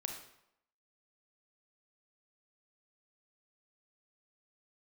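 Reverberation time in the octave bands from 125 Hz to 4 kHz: 0.65 s, 0.75 s, 0.75 s, 0.80 s, 0.70 s, 0.60 s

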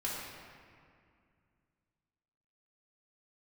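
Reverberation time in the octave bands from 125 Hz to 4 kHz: 3.1 s, 2.9 s, 2.2 s, 2.2 s, 2.1 s, 1.4 s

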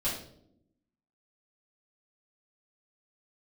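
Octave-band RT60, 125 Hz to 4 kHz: 1.1 s, 1.2 s, 0.90 s, 0.55 s, 0.45 s, 0.50 s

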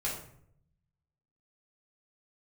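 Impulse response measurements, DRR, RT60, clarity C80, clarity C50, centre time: -6.0 dB, 0.65 s, 8.5 dB, 4.5 dB, 37 ms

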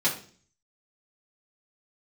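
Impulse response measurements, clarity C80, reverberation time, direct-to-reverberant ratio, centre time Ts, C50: 13.5 dB, 0.45 s, -6.5 dB, 20 ms, 9.0 dB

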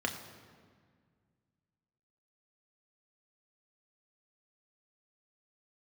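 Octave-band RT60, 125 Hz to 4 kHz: 2.7 s, 2.5 s, 1.9 s, 1.7 s, 1.6 s, 1.3 s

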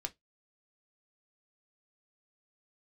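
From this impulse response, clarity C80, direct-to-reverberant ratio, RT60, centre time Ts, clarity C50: 39.5 dB, 5.0 dB, 0.15 s, 5 ms, 25.0 dB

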